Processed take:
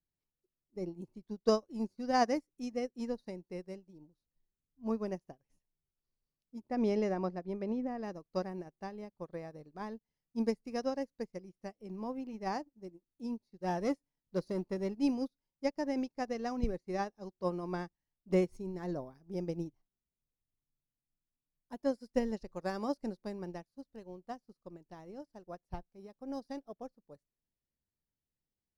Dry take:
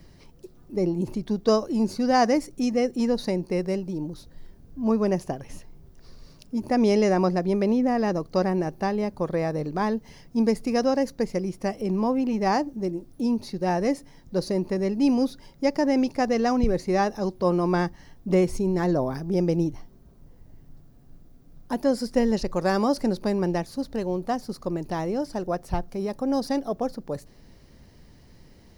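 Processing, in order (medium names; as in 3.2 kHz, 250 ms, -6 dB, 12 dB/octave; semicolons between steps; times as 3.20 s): 6.64–8.03 s: low-pass 2.8 kHz 6 dB/octave; 13.64–14.95 s: waveshaping leveller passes 1; upward expansion 2.5:1, over -41 dBFS; trim -6 dB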